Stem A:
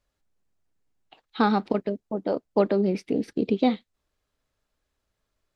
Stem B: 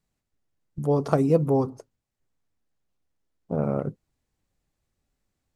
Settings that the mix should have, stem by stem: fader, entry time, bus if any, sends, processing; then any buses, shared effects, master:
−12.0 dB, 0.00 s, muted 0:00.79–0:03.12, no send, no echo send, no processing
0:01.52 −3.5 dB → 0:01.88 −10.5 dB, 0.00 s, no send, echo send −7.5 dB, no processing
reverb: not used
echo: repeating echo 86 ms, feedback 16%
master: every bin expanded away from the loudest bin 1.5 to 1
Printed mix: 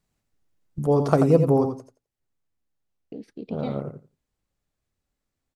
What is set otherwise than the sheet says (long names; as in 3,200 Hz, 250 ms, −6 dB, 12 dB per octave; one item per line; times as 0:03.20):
stem B −3.5 dB → +2.5 dB
master: missing every bin expanded away from the loudest bin 1.5 to 1